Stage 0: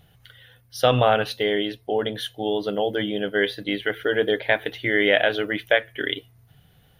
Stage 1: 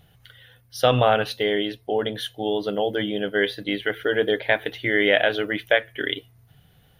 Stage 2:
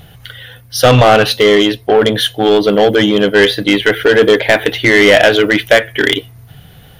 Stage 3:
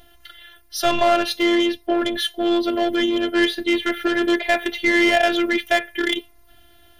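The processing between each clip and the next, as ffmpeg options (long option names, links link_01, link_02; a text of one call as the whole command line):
ffmpeg -i in.wav -af anull out.wav
ffmpeg -i in.wav -af "apsyclip=11dB,acontrast=90,volume=-1dB" out.wav
ffmpeg -i in.wav -af "afftfilt=real='hypot(re,im)*cos(PI*b)':imag='0':win_size=512:overlap=0.75,volume=-6dB" out.wav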